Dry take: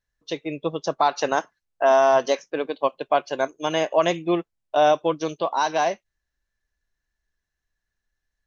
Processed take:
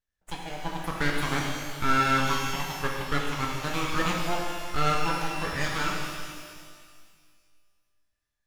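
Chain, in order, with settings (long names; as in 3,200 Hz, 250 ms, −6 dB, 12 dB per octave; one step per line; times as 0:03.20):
full-wave rectification
reverb with rising layers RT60 1.9 s, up +12 semitones, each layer −8 dB, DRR −1 dB
level −6 dB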